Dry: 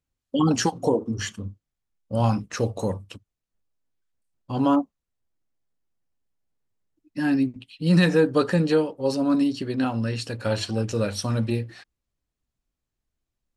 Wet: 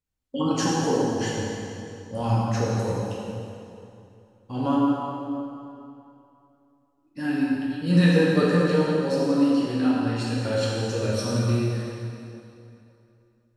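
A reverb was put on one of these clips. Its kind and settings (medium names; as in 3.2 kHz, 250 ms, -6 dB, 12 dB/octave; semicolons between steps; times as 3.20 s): plate-style reverb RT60 2.8 s, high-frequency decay 0.8×, DRR -6 dB; trim -6.5 dB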